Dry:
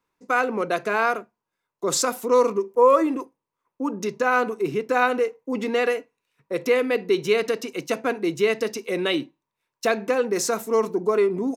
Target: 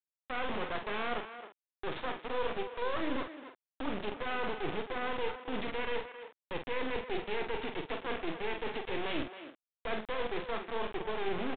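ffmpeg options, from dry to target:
-filter_complex "[0:a]areverse,acompressor=threshold=-26dB:ratio=16,areverse,asoftclip=type=tanh:threshold=-21.5dB,aresample=11025,acrusher=bits=3:dc=4:mix=0:aa=0.000001,aresample=44100,asplit=2[a][b];[b]adelay=46,volume=-7dB[c];[a][c]amix=inputs=2:normalize=0,asplit=2[d][e];[e]adelay=270,highpass=300,lowpass=3.4k,asoftclip=type=hard:threshold=-27.5dB,volume=-10dB[f];[d][f]amix=inputs=2:normalize=0,aresample=8000,aresample=44100,volume=-1.5dB"

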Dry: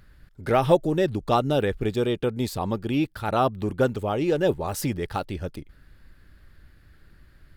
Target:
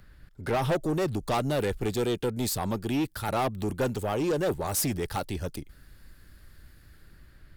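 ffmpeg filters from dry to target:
-filter_complex "[0:a]acrossover=split=240|1600|5200[a][b][c][d];[d]dynaudnorm=f=180:g=9:m=10.5dB[e];[a][b][c][e]amix=inputs=4:normalize=0,asoftclip=type=tanh:threshold=-22dB"

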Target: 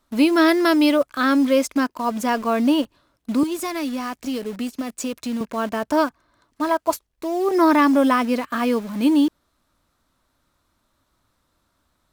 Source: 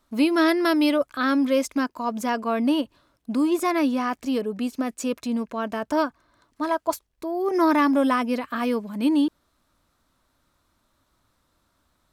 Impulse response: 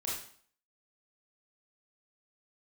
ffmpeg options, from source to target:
-filter_complex "[0:a]asettb=1/sr,asplit=3[a][b][c];[a]atrim=end=3.434[d];[b]atrim=start=3.43:end=5.41,asetpts=PTS-STARTPTS,afade=t=in:d=0.004:c=qsin,afade=t=out:st=1.976:d=0.004:c=qsin,acrossover=split=150|3000[e][f][g];[f]acompressor=threshold=-29dB:ratio=6[h];[e][h][g]amix=inputs=3:normalize=0[i];[c]atrim=start=5.406[j];[d][i]acrossfade=d=0.004:c1=hsin:c2=qsin[k];[k][j]acrossfade=d=0.004:c1=qsin:c2=hsin,asplit=2[l][m];[m]acrusher=bits=5:mix=0:aa=0.000001,volume=-5.5dB[n];[l][n]amix=inputs=2:normalize=0"

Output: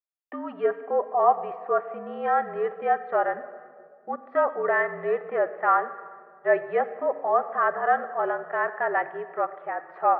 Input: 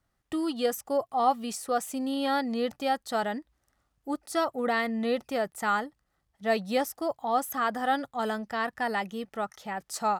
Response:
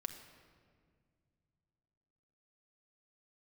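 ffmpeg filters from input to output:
-filter_complex "[0:a]highpass=f=450:t=q:w=0.5412,highpass=f=450:t=q:w=1.307,lowpass=f=2k:t=q:w=0.5176,lowpass=f=2k:t=q:w=0.7071,lowpass=f=2k:t=q:w=1.932,afreqshift=-51,agate=range=-33dB:threshold=-59dB:ratio=3:detection=peak,asplit=2[a][b];[1:a]atrim=start_sample=2205[c];[b][c]afir=irnorm=-1:irlink=0,volume=5dB[d];[a][d]amix=inputs=2:normalize=0,volume=-2dB"

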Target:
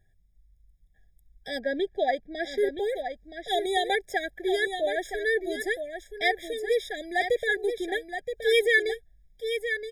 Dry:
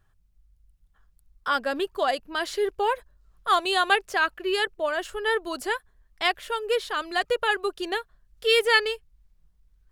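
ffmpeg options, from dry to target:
-filter_complex "[0:a]asettb=1/sr,asplit=3[a][b][c];[a]atrim=end=1.594[d];[b]atrim=start=1.59:end=2.58,asetpts=PTS-STARTPTS,afade=t=in:d=0.004:c=qsin,afade=t=out:st=0.986:d=0.004:c=qsin,lowpass=4.4k[e];[c]atrim=start=2.576[f];[d][e]acrossfade=d=0.004:c1=hsin:c2=qsin[g];[g][f]acrossfade=d=0.004:c1=qsin:c2=hsin,aecho=1:1:972:0.398,afftfilt=real='re*eq(mod(floor(b*sr/1024/800),2),0)':imag='im*eq(mod(floor(b*sr/1024/800),2),0)':win_size=1024:overlap=0.75"

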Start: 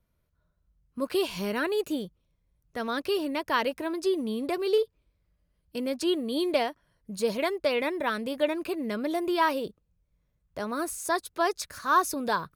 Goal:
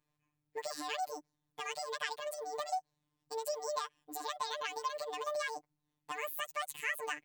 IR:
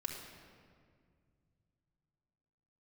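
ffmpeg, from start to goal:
-af "lowshelf=f=200:g=-9,acompressor=threshold=-34dB:ratio=2.5,afftfilt=real='hypot(re,im)*cos(PI*b)':imag='0':win_size=2048:overlap=0.75,asetrate=76440,aresample=44100"

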